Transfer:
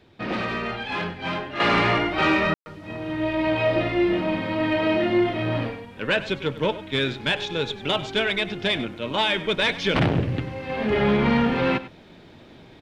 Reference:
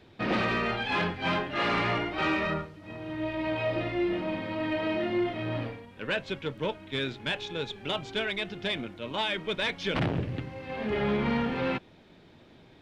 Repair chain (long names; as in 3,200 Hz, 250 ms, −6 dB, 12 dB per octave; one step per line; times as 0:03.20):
ambience match 0:02.54–0:02.66
echo removal 98 ms −15.5 dB
level correction −7.5 dB, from 0:01.60